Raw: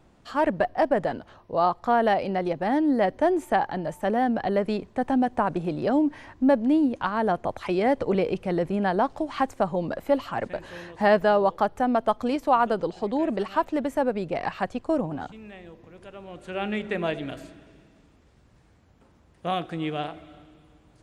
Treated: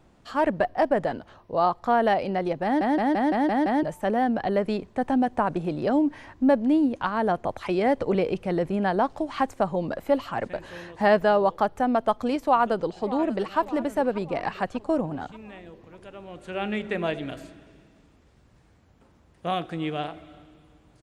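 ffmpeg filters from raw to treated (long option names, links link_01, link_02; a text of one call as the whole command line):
ffmpeg -i in.wav -filter_complex "[0:a]asplit=2[link_01][link_02];[link_02]afade=type=in:start_time=12.45:duration=0.01,afade=type=out:start_time=13.59:duration=0.01,aecho=0:1:590|1180|1770|2360|2950:0.16788|0.0923342|0.0507838|0.0279311|0.0153621[link_03];[link_01][link_03]amix=inputs=2:normalize=0,asplit=8[link_04][link_05][link_06][link_07][link_08][link_09][link_10][link_11];[link_04]atrim=end=2.812[link_12];[link_05]atrim=start=2.638:end=2.812[link_13];[link_06]atrim=start=2.638:end=2.812[link_14];[link_07]atrim=start=2.638:end=2.812[link_15];[link_08]atrim=start=2.638:end=2.812[link_16];[link_09]atrim=start=2.638:end=2.812[link_17];[link_10]atrim=start=2.638:end=2.812[link_18];[link_11]atrim=start=3.828[link_19];[link_12][link_13]acrossfade=duration=0.004:curve1=hsin:curve2=hsin[link_20];[link_20][link_14]acrossfade=duration=0.004:curve1=hsin:curve2=hsin[link_21];[link_21][link_15]acrossfade=duration=0.004:curve1=hsin:curve2=hsin[link_22];[link_22][link_16]acrossfade=duration=0.004:curve1=hsin:curve2=hsin[link_23];[link_23][link_17]acrossfade=duration=0.004:curve1=hsin:curve2=hsin[link_24];[link_24][link_18]acrossfade=duration=0.004:curve1=hsin:curve2=hsin[link_25];[link_25][link_19]acrossfade=duration=0.004:curve1=hsin:curve2=hsin" out.wav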